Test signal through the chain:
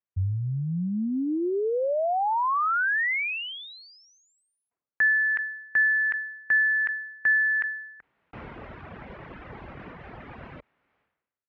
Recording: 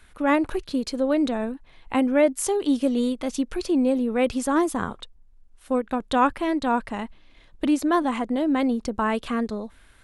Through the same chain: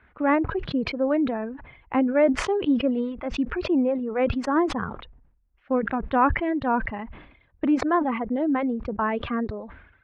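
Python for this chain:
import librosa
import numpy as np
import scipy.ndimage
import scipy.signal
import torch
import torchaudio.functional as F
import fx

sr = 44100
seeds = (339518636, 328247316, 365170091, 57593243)

y = scipy.signal.sosfilt(scipy.signal.butter(4, 2200.0, 'lowpass', fs=sr, output='sos'), x)
y = fx.dereverb_blind(y, sr, rt60_s=1.4)
y = scipy.signal.sosfilt(scipy.signal.butter(2, 56.0, 'highpass', fs=sr, output='sos'), y)
y = fx.sustainer(y, sr, db_per_s=69.0)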